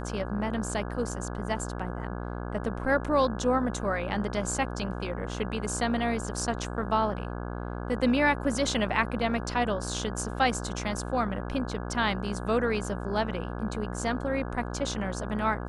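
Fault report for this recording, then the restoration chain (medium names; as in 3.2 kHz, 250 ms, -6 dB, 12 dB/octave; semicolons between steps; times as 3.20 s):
buzz 60 Hz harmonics 28 -35 dBFS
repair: de-hum 60 Hz, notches 28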